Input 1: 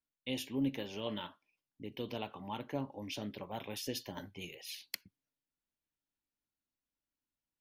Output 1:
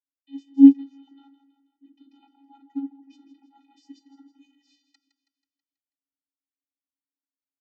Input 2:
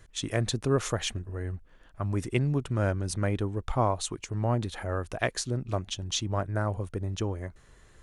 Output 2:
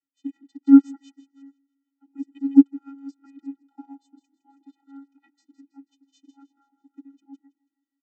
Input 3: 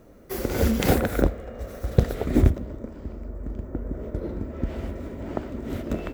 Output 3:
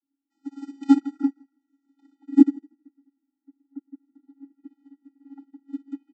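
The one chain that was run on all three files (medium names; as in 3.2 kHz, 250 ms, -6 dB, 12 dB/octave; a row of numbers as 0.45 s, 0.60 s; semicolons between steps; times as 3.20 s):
treble shelf 3.5 kHz +9.5 dB; vocoder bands 32, square 276 Hz; small resonant body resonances 330/630 Hz, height 10 dB, ringing for 40 ms; on a send: feedback delay 162 ms, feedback 52%, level -11 dB; on the sum: upward expansion 2.5:1, over -36 dBFS; peak normalisation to -1.5 dBFS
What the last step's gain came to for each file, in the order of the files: +16.0 dB, +6.0 dB, +3.5 dB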